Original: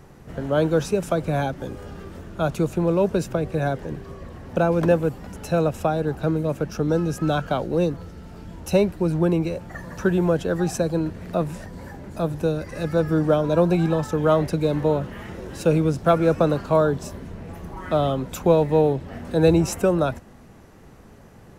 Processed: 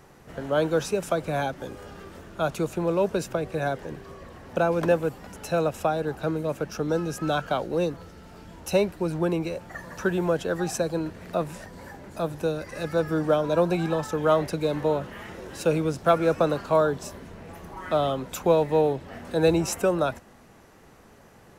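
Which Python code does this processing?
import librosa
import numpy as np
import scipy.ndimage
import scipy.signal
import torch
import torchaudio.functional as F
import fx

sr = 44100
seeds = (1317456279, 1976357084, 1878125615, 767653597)

y = fx.low_shelf(x, sr, hz=320.0, db=-9.5)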